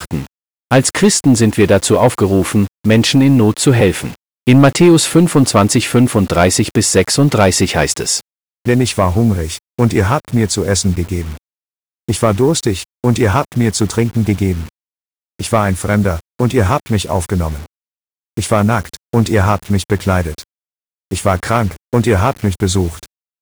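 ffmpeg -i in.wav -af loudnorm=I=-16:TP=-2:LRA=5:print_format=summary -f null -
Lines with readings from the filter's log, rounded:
Input Integrated:    -13.8 LUFS
Input True Peak:      -1.5 dBTP
Input LRA:             5.9 LU
Input Threshold:     -24.2 LUFS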